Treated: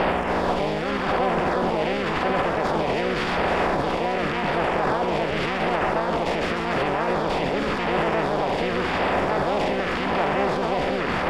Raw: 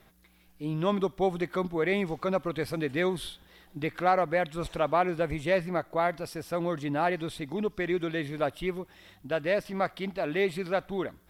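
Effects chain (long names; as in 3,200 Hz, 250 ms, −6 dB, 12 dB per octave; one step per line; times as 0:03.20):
compressor on every frequency bin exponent 0.2
camcorder AGC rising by 11 dB per second
high-shelf EQ 8,500 Hz +2 dB
transient designer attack +2 dB, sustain +8 dB
brickwall limiter −15 dBFS, peak gain reduction 11 dB
auto-filter notch saw down 0.89 Hz 410–6,300 Hz
on a send: delay with a high-pass on its return 302 ms, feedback 51%, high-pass 3,600 Hz, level −4 dB
on the sum: pitch-shifted copies added +5 semitones −1 dB
high-frequency loss of the air 100 metres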